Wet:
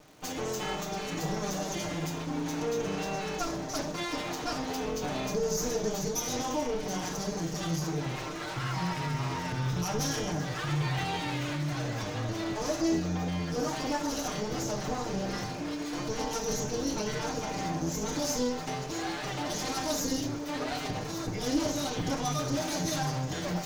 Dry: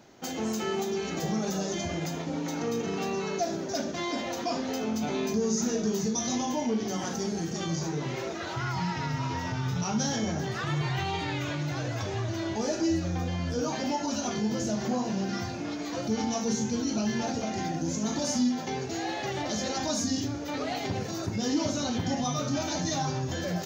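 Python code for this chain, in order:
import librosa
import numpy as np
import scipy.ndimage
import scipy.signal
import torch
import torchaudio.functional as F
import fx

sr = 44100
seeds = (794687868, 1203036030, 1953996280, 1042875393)

y = fx.lower_of_two(x, sr, delay_ms=6.6)
y = fx.dmg_crackle(y, sr, seeds[0], per_s=330.0, level_db=-47.0)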